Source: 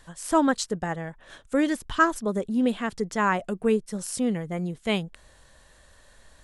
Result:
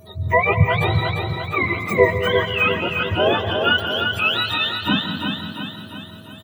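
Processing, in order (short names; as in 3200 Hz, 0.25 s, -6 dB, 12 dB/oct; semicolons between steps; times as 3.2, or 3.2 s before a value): spectrum mirrored in octaves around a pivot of 800 Hz; whine 640 Hz -55 dBFS; 3.78–4.54 RIAA curve recording; feedback echo 0.348 s, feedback 54%, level -5 dB; reverb RT60 1.0 s, pre-delay 0.141 s, DRR 9 dB; gain +6.5 dB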